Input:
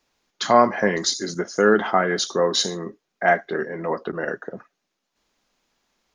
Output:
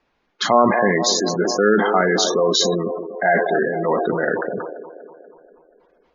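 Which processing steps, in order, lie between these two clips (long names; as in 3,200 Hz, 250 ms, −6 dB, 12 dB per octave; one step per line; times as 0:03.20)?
delay with a band-pass on its return 241 ms, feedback 56%, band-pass 550 Hz, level −10.5 dB
gate on every frequency bin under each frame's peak −20 dB strong
in parallel at −2 dB: compressor whose output falls as the input rises −23 dBFS, ratio −1
on the sum: low-pass that shuts in the quiet parts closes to 2,500 Hz, open at −13 dBFS
level that may fall only so fast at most 44 dB per second
level −1 dB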